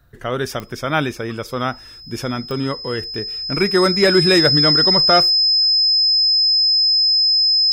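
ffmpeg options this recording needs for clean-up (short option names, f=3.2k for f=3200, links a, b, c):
-af "adeclick=t=4,bandreject=f=5.1k:w=30"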